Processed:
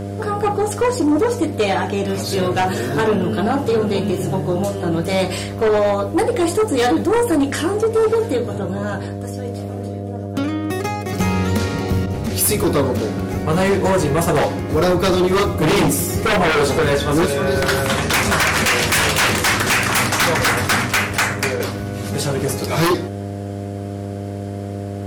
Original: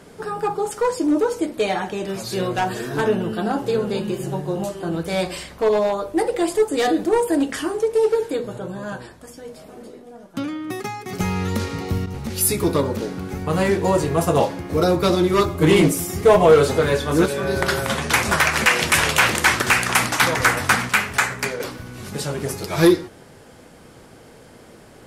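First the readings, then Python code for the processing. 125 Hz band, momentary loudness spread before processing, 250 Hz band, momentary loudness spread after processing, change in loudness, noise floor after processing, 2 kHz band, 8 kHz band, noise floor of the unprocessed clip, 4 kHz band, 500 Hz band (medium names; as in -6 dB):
+5.0 dB, 13 LU, +3.0 dB, 12 LU, +1.5 dB, -27 dBFS, +1.5 dB, +3.0 dB, -46 dBFS, +3.5 dB, +1.5 dB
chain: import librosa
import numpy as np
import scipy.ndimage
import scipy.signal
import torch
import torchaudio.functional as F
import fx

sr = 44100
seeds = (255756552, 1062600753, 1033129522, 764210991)

y = fx.dmg_buzz(x, sr, base_hz=100.0, harmonics=7, level_db=-32.0, tilt_db=-4, odd_only=False)
y = fx.fold_sine(y, sr, drive_db=8, ceiling_db=-5.0)
y = y * librosa.db_to_amplitude(-6.5)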